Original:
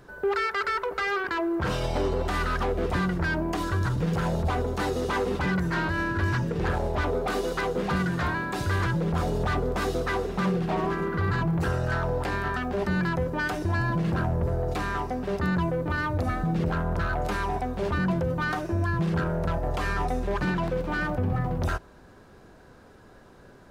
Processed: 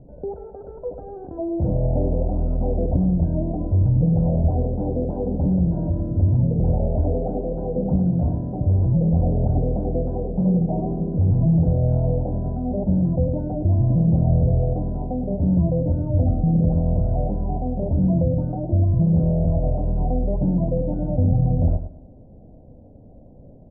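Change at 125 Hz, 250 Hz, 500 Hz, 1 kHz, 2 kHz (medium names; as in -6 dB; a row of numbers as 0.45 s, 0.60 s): +9.5 dB, +7.0 dB, +2.0 dB, -6.5 dB, under -40 dB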